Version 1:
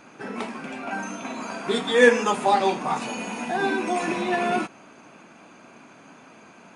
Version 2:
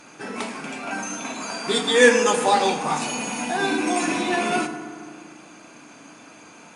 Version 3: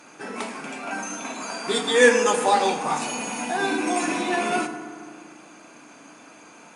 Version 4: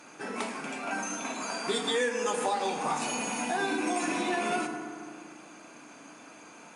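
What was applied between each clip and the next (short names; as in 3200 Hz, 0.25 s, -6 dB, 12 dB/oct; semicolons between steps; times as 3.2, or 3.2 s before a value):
bell 9100 Hz +10.5 dB 2.4 oct; on a send at -7 dB: reverb RT60 2.0 s, pre-delay 3 ms
HPF 220 Hz 6 dB/oct; bell 3900 Hz -3 dB 1.8 oct
compressor 8:1, threshold -23 dBFS, peak gain reduction 13.5 dB; gain -2.5 dB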